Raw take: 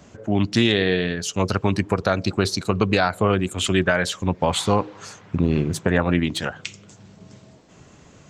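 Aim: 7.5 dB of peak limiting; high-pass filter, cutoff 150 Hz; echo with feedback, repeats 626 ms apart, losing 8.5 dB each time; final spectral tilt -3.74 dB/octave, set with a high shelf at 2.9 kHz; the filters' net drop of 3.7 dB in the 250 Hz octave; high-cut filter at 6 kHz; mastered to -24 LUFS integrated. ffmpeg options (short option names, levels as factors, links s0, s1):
-af "highpass=150,lowpass=6000,equalizer=f=250:t=o:g=-4,highshelf=f=2900:g=7,alimiter=limit=0.251:level=0:latency=1,aecho=1:1:626|1252|1878|2504:0.376|0.143|0.0543|0.0206,volume=1.06"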